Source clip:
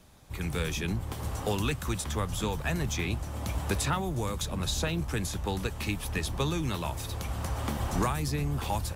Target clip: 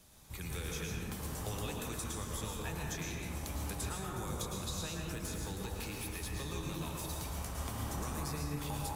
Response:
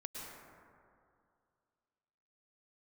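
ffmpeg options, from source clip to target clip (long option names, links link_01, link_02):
-filter_complex "[0:a]highshelf=frequency=4100:gain=11,acompressor=threshold=-32dB:ratio=10,asettb=1/sr,asplit=3[link_01][link_02][link_03];[link_01]atrim=end=5.004[link_04];[link_02]atrim=start=5:end=7.34,asetpts=PTS-STARTPTS,afade=type=in:duration=0.004:curve=qsin,afade=type=out:start_time=2.336:duration=0.004:curve=qsin,volume=31dB,asoftclip=hard,volume=-31dB[link_05];[link_03]atrim=start=7.336[link_06];[link_04][link_05]acrossfade=duration=0.004:curve1=hsin:curve2=qsin[link_07];[link_07][link_06]acrossfade=duration=0.004:curve1=qsin:curve2=hsin[link_08];[1:a]atrim=start_sample=2205[link_09];[link_08][link_09]afir=irnorm=-1:irlink=0,volume=-1.5dB"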